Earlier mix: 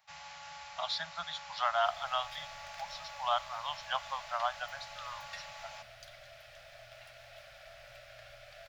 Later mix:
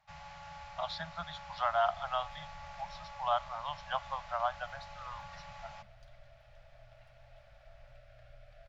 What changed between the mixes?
second sound -8.5 dB; master: add tilt -3.5 dB/oct

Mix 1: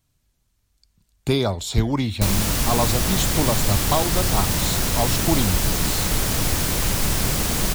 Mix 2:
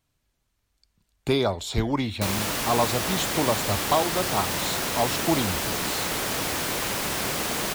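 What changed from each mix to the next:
background: add HPF 210 Hz 6 dB/oct; master: add tone controls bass -7 dB, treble -6 dB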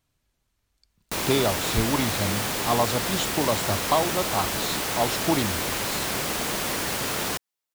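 background: entry -1.10 s

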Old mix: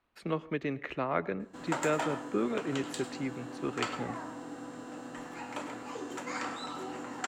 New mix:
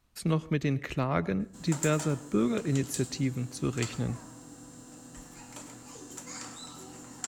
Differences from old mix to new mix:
background -10.5 dB; master: remove three-band isolator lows -15 dB, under 270 Hz, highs -20 dB, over 3200 Hz

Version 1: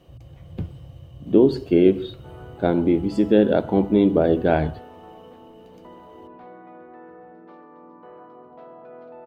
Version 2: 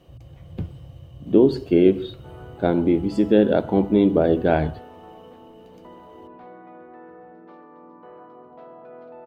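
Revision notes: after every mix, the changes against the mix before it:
none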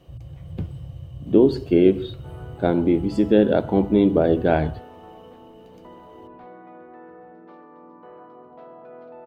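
first sound +5.5 dB

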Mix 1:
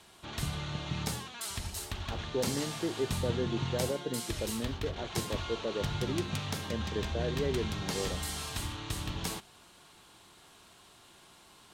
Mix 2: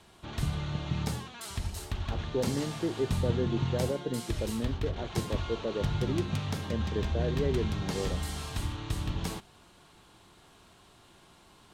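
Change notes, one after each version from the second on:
master: add tilt -1.5 dB/oct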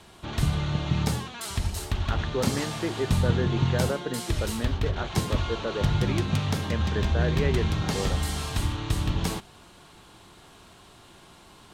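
speech: remove running mean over 35 samples; background +6.5 dB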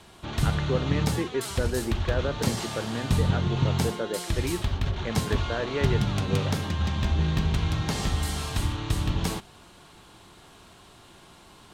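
speech: entry -1.65 s

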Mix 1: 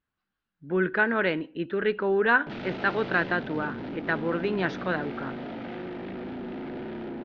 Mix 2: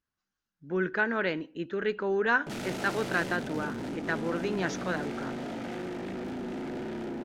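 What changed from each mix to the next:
speech -4.0 dB; master: remove inverse Chebyshev low-pass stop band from 9000 Hz, stop band 50 dB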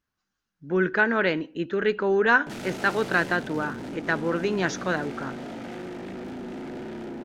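speech +6.0 dB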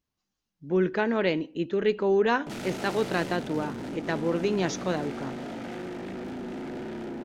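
speech: add bell 1500 Hz -12 dB 0.68 oct

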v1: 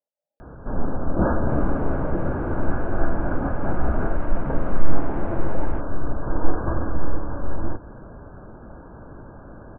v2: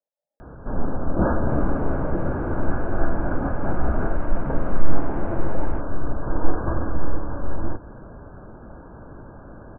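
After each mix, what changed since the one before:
second sound: add air absorption 150 m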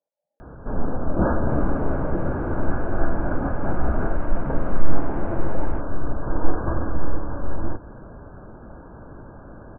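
speech +6.0 dB

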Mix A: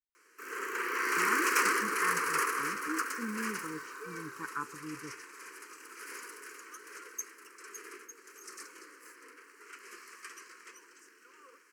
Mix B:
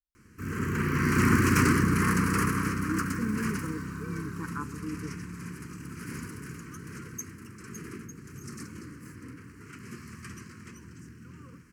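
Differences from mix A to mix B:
speech: add tilt -3 dB/oct; background: remove steep high-pass 410 Hz 36 dB/oct

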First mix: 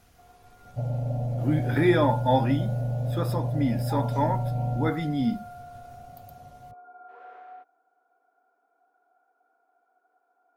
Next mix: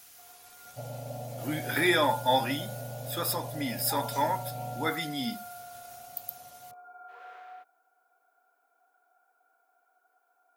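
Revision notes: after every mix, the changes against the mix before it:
master: add tilt +4.5 dB/oct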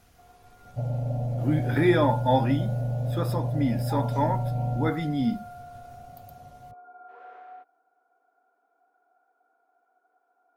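master: add tilt -4.5 dB/oct

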